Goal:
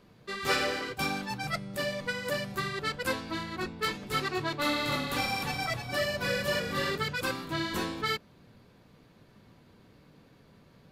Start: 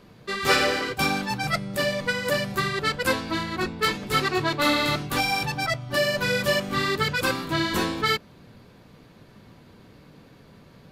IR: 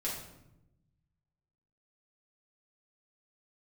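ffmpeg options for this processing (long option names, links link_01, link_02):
-filter_complex "[0:a]asettb=1/sr,asplit=3[link_01][link_02][link_03];[link_01]atrim=end=4.554[link_04];[link_02]atrim=start=4.55:end=6.98,asetpts=PTS-STARTPTS,afade=type=in:duration=0.004:curve=qsin,afade=type=out:start_time=2.426:duration=0.004:curve=qsin,asplit=5[link_05][link_06][link_07][link_08][link_09];[link_06]adelay=305,afreqshift=-32,volume=-5.5dB[link_10];[link_07]adelay=610,afreqshift=-64,volume=-14.1dB[link_11];[link_08]adelay=915,afreqshift=-96,volume=-22.8dB[link_12];[link_09]adelay=1220,afreqshift=-128,volume=-31.4dB[link_13];[link_05][link_10][link_11][link_12][link_13]amix=inputs=5:normalize=0,atrim=end_sample=107163[link_14];[link_03]atrim=start=6.976[link_15];[link_04][link_14]acrossfade=duration=0.004:curve1=hsin:curve2=qsin[link_16];[link_16][link_15]acrossfade=duration=0.004:curve1=qsin:curve2=hsin,volume=-7.5dB"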